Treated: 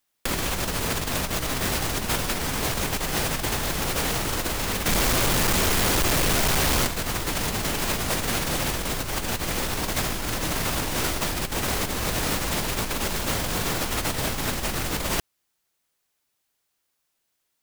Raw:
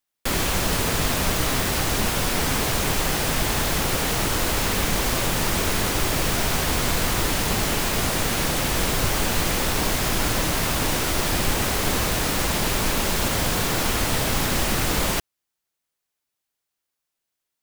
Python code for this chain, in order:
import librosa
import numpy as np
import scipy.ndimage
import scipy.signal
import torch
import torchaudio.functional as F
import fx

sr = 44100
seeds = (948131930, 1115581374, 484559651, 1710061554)

y = fx.clip_hard(x, sr, threshold_db=-26.0, at=(4.86, 6.86))
y = fx.over_compress(y, sr, threshold_db=-26.0, ratio=-0.5)
y = y * 10.0 ** (2.0 / 20.0)